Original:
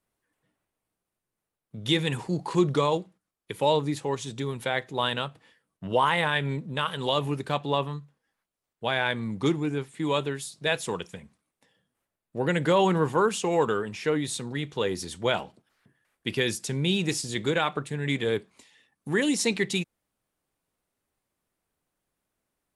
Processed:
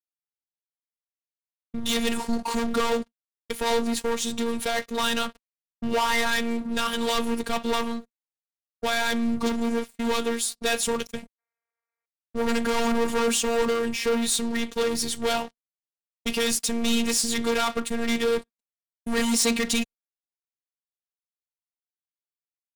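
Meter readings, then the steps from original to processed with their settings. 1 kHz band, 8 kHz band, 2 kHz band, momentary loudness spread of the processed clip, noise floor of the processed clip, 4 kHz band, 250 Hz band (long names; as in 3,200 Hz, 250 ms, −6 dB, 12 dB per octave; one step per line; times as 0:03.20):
0.0 dB, +9.0 dB, +1.0 dB, 8 LU, below −85 dBFS, +3.0 dB, +3.0 dB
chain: leveller curve on the samples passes 5
sound drawn into the spectrogram noise, 0:11.38–0:12.06, 380–2,500 Hz −38 dBFS
high-shelf EQ 3,800 Hz +4.5 dB
noise gate −29 dBFS, range −45 dB
phases set to zero 232 Hz
low-shelf EQ 83 Hz +8 dB
level −8.5 dB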